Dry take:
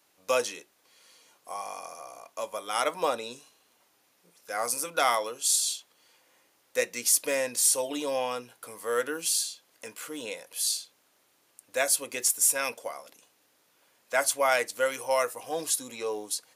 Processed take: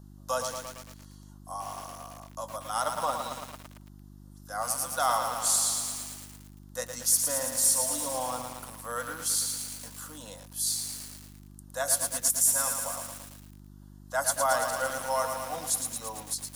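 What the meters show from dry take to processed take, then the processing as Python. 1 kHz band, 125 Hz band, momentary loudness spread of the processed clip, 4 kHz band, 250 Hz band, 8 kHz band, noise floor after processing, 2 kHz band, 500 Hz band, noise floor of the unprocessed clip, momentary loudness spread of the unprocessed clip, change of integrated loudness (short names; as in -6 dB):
+0.5 dB, +11.0 dB, 19 LU, -2.0 dB, -3.0 dB, +1.0 dB, -50 dBFS, -4.5 dB, -5.0 dB, -68 dBFS, 17 LU, -0.5 dB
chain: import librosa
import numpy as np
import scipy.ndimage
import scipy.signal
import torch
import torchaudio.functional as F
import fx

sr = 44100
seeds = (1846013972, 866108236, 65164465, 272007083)

y = fx.dmg_buzz(x, sr, base_hz=50.0, harmonics=8, level_db=-47.0, tilt_db=-1, odd_only=False)
y = fx.fixed_phaser(y, sr, hz=970.0, stages=4)
y = fx.echo_crushed(y, sr, ms=112, feedback_pct=80, bits=7, wet_db=-5)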